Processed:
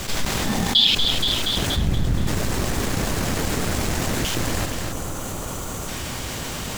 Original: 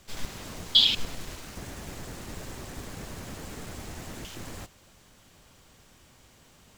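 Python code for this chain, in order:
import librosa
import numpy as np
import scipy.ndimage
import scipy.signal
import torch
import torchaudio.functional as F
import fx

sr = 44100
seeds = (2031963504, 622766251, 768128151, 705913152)

p1 = fx.law_mismatch(x, sr, coded='A')
p2 = fx.small_body(p1, sr, hz=(210.0, 800.0, 1800.0, 3500.0), ring_ms=45, db=11, at=(0.44, 0.88))
p3 = fx.bass_treble(p2, sr, bass_db=15, treble_db=-4, at=(1.76, 2.27))
p4 = p3 + fx.echo_feedback(p3, sr, ms=237, feedback_pct=55, wet_db=-14.0, dry=0)
p5 = fx.spec_box(p4, sr, start_s=4.92, length_s=0.96, low_hz=1500.0, high_hz=5800.0, gain_db=-7)
y = fx.env_flatten(p5, sr, amount_pct=70)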